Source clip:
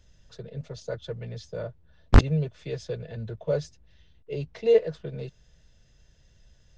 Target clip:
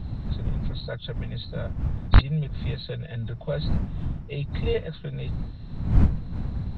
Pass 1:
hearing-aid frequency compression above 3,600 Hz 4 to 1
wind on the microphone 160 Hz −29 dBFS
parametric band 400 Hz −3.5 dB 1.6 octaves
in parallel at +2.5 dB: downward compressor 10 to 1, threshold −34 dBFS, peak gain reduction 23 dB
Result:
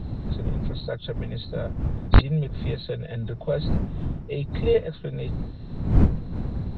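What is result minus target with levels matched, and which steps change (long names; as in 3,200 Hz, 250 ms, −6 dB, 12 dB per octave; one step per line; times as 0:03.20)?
500 Hz band +4.5 dB
change: parametric band 400 Hz −11.5 dB 1.6 octaves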